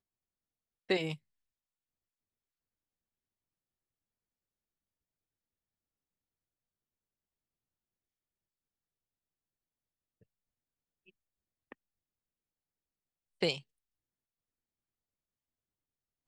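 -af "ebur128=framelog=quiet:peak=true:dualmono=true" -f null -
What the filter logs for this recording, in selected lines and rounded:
Integrated loudness:
  I:         -32.2 LUFS
  Threshold: -45.0 LUFS
Loudness range:
  LRA:         0.6 LU
  Threshold: -61.4 LUFS
  LRA low:   -39.9 LUFS
  LRA high:  -39.2 LUFS
True peak:
  Peak:      -17.4 dBFS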